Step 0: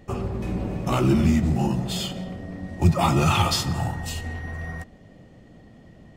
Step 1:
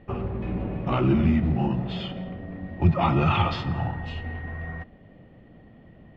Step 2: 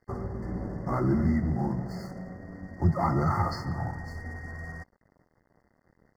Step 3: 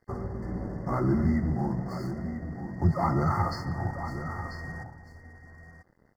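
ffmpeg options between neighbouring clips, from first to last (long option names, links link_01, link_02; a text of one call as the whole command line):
ffmpeg -i in.wav -af "lowpass=frequency=3100:width=0.5412,lowpass=frequency=3100:width=1.3066,volume=-1.5dB" out.wav
ffmpeg -i in.wav -af "highshelf=frequency=4000:gain=11,aeval=exprs='sgn(val(0))*max(abs(val(0))-0.00447,0)':channel_layout=same,afftfilt=real='re*(1-between(b*sr/4096,2100,4400))':imag='im*(1-between(b*sr/4096,2100,4400))':win_size=4096:overlap=0.75,volume=-4dB" out.wav
ffmpeg -i in.wav -af "aecho=1:1:992:0.299" out.wav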